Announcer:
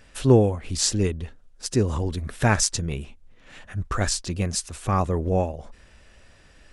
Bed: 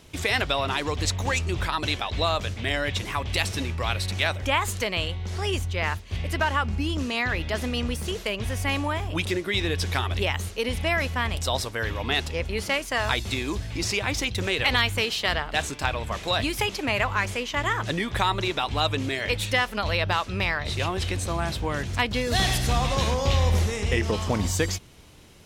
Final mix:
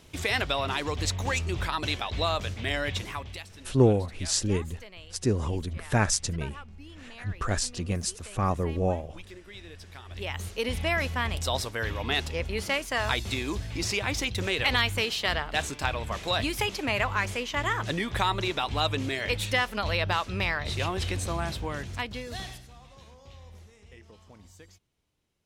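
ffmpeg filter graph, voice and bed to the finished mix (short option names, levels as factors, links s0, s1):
-filter_complex "[0:a]adelay=3500,volume=0.631[s0];[1:a]volume=5.31,afade=t=out:st=2.93:d=0.51:silence=0.141254,afade=t=in:st=10.05:d=0.53:silence=0.133352,afade=t=out:st=21.27:d=1.41:silence=0.0562341[s1];[s0][s1]amix=inputs=2:normalize=0"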